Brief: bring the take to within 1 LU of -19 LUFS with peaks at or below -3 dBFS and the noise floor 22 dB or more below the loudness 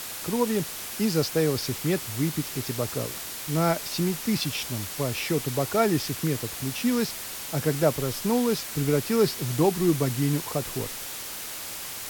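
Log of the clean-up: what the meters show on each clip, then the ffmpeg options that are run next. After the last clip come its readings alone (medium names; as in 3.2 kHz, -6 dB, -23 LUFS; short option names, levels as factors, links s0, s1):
noise floor -36 dBFS; noise floor target -49 dBFS; loudness -26.5 LUFS; peak level -9.5 dBFS; loudness target -19.0 LUFS
-> -af "afftdn=nr=13:nf=-36"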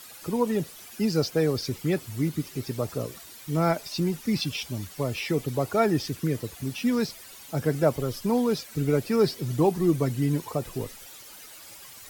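noise floor -46 dBFS; noise floor target -49 dBFS
-> -af "afftdn=nr=6:nf=-46"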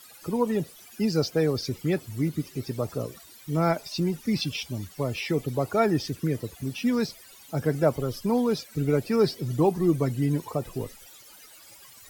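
noise floor -50 dBFS; loudness -27.5 LUFS; peak level -10.0 dBFS; loudness target -19.0 LUFS
-> -af "volume=2.66,alimiter=limit=0.708:level=0:latency=1"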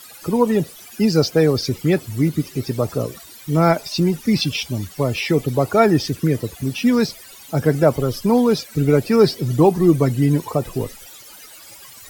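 loudness -19.0 LUFS; peak level -3.0 dBFS; noise floor -42 dBFS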